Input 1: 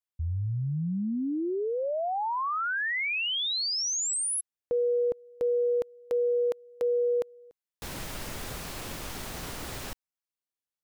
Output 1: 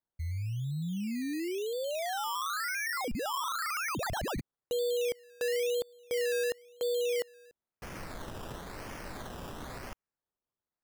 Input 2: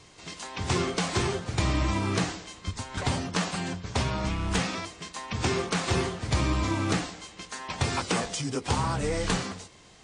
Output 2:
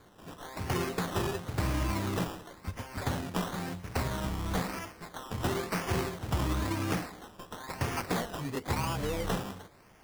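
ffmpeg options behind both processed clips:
ffmpeg -i in.wav -af "acrusher=samples=16:mix=1:aa=0.000001:lfo=1:lforange=9.6:lforate=0.98,volume=-4.5dB" out.wav

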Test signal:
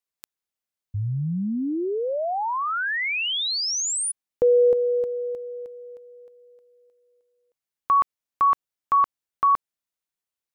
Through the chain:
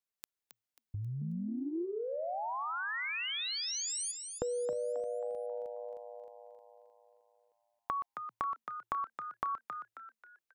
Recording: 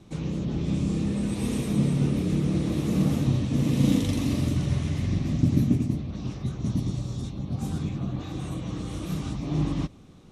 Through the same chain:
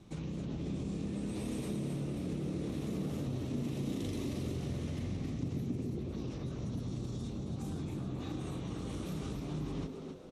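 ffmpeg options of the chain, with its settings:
ffmpeg -i in.wav -filter_complex "[0:a]acompressor=threshold=-35dB:ratio=3:attack=14:release=56:knee=1:detection=peak,asplit=6[link_01][link_02][link_03][link_04][link_05][link_06];[link_02]adelay=269,afreqshift=110,volume=-7dB[link_07];[link_03]adelay=538,afreqshift=220,volume=-15.2dB[link_08];[link_04]adelay=807,afreqshift=330,volume=-23.4dB[link_09];[link_05]adelay=1076,afreqshift=440,volume=-31.5dB[link_10];[link_06]adelay=1345,afreqshift=550,volume=-39.7dB[link_11];[link_01][link_07][link_08][link_09][link_10][link_11]amix=inputs=6:normalize=0,volume=-5dB" out.wav

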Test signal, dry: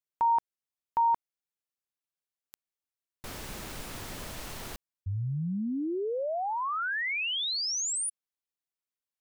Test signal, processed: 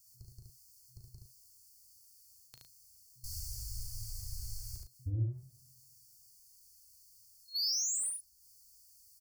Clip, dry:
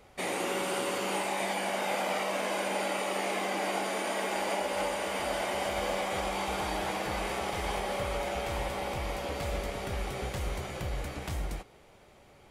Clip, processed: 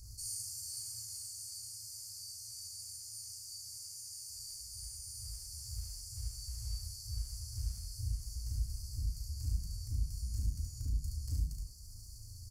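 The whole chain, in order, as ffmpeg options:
ffmpeg -i in.wav -filter_complex "[0:a]afftfilt=real='re*(1-between(b*sr/4096,120,4300))':imag='im*(1-between(b*sr/4096,120,4300))':win_size=4096:overlap=0.75,areverse,acompressor=mode=upward:threshold=-40dB:ratio=2.5:attack=0.25:release=46:knee=2.83:detection=peak,areverse,asoftclip=type=tanh:threshold=-32dB,asplit=2[link_01][link_02];[link_02]adelay=37,volume=-6dB[link_03];[link_01][link_03]amix=inputs=2:normalize=0,asplit=2[link_04][link_05];[link_05]aecho=0:1:15|72:0.133|0.708[link_06];[link_04][link_06]amix=inputs=2:normalize=0,adynamicequalizer=threshold=0.001:dfrequency=2900:dqfactor=0.7:tfrequency=2900:tqfactor=0.7:attack=5:release=100:ratio=0.438:range=3:mode=cutabove:tftype=highshelf,volume=1.5dB" out.wav

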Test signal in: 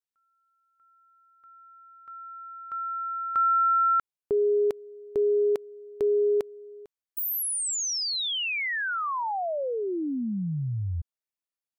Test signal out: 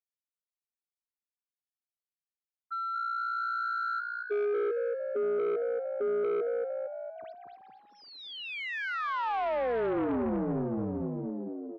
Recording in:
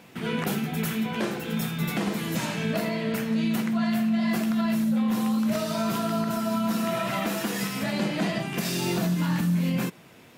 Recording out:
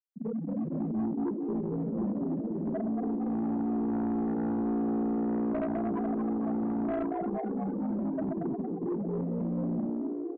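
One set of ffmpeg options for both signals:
ffmpeg -i in.wav -filter_complex "[0:a]aeval=exprs='(tanh(50.1*val(0)+0.2)-tanh(0.2))/50.1':channel_layout=same,bandreject=frequency=60:width_type=h:width=6,bandreject=frequency=120:width_type=h:width=6,bandreject=frequency=180:width_type=h:width=6,bandreject=frequency=240:width_type=h:width=6,bandreject=frequency=300:width_type=h:width=6,bandreject=frequency=360:width_type=h:width=6,afftfilt=real='re*gte(hypot(re,im),0.1)':imag='im*gte(hypot(re,im),0.1)':win_size=1024:overlap=0.75,asplit=2[link_01][link_02];[link_02]aeval=exprs='0.01*(abs(mod(val(0)/0.01+3,4)-2)-1)':channel_layout=same,volume=-5.5dB[link_03];[link_01][link_03]amix=inputs=2:normalize=0,tiltshelf=frequency=890:gain=7,asplit=2[link_04][link_05];[link_05]asplit=7[link_06][link_07][link_08][link_09][link_10][link_11][link_12];[link_06]adelay=229,afreqshift=59,volume=-5dB[link_13];[link_07]adelay=458,afreqshift=118,volume=-10dB[link_14];[link_08]adelay=687,afreqshift=177,volume=-15.1dB[link_15];[link_09]adelay=916,afreqshift=236,volume=-20.1dB[link_16];[link_10]adelay=1145,afreqshift=295,volume=-25.1dB[link_17];[link_11]adelay=1374,afreqshift=354,volume=-30.2dB[link_18];[link_12]adelay=1603,afreqshift=413,volume=-35.2dB[link_19];[link_13][link_14][link_15][link_16][link_17][link_18][link_19]amix=inputs=7:normalize=0[link_20];[link_04][link_20]amix=inputs=2:normalize=0,adynamicsmooth=sensitivity=1.5:basefreq=4000,acrossover=split=210 3800:gain=0.0891 1 0.0891[link_21][link_22][link_23];[link_21][link_22][link_23]amix=inputs=3:normalize=0,aresample=11025,aresample=44100,highpass=frequency=50:width=0.5412,highpass=frequency=50:width=1.3066,aeval=exprs='0.0794*(cos(1*acos(clip(val(0)/0.0794,-1,1)))-cos(1*PI/2))+0.0158*(cos(5*acos(clip(val(0)/0.0794,-1,1)))-cos(5*PI/2))':channel_layout=same" out.wav

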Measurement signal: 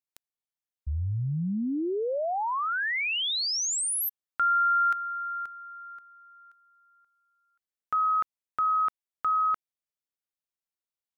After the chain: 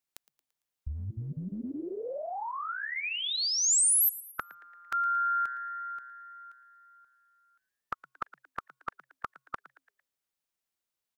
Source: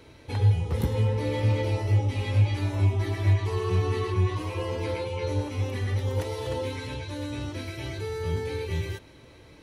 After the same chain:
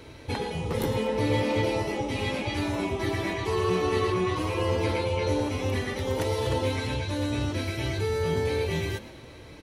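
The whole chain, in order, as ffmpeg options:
ffmpeg -i in.wav -filter_complex "[0:a]afftfilt=real='re*lt(hypot(re,im),0.355)':imag='im*lt(hypot(re,im),0.355)':win_size=1024:overlap=0.75,asplit=5[link_01][link_02][link_03][link_04][link_05];[link_02]adelay=113,afreqshift=130,volume=-18dB[link_06];[link_03]adelay=226,afreqshift=260,volume=-24.7dB[link_07];[link_04]adelay=339,afreqshift=390,volume=-31.5dB[link_08];[link_05]adelay=452,afreqshift=520,volume=-38.2dB[link_09];[link_01][link_06][link_07][link_08][link_09]amix=inputs=5:normalize=0,volume=5dB" out.wav

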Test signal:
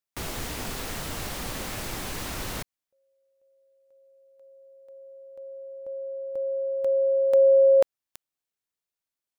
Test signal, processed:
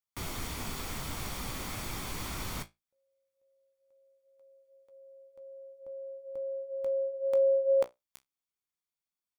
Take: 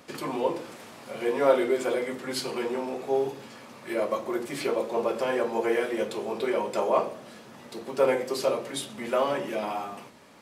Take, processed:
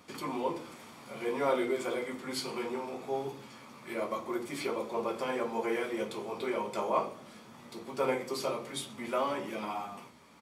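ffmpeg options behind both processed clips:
ffmpeg -i in.wav -af "aecho=1:1:0.9:0.32,flanger=delay=9.7:depth=9.8:regen=-51:speed=0.21:shape=triangular,volume=-1dB" out.wav

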